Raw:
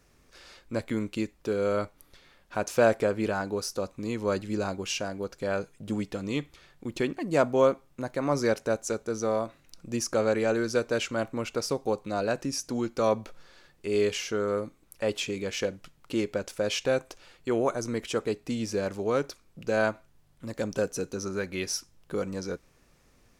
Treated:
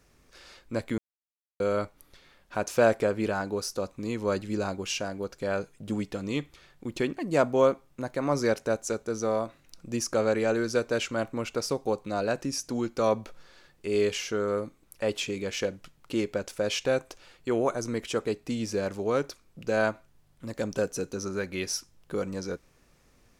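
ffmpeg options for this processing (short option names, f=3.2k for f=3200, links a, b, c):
-filter_complex "[0:a]asplit=3[a][b][c];[a]atrim=end=0.98,asetpts=PTS-STARTPTS,afade=t=out:st=0.976:d=0.004:c=hsin[d];[b]atrim=start=0.98:end=1.6,asetpts=PTS-STARTPTS,volume=0[e];[c]atrim=start=1.6,asetpts=PTS-STARTPTS,afade=t=in:d=0.004:c=hsin[f];[d][e][f]concat=n=3:v=0:a=1"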